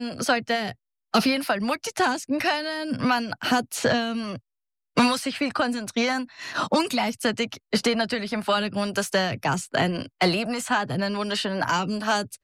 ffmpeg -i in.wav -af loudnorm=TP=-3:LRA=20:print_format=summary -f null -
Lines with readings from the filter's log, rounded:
Input Integrated:    -25.0 LUFS
Input True Peak:     -11.6 dBTP
Input LRA:             0.7 LU
Input Threshold:     -35.1 LUFS